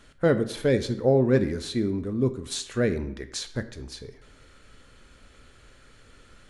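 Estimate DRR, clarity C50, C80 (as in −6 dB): 9.5 dB, 14.0 dB, 16.5 dB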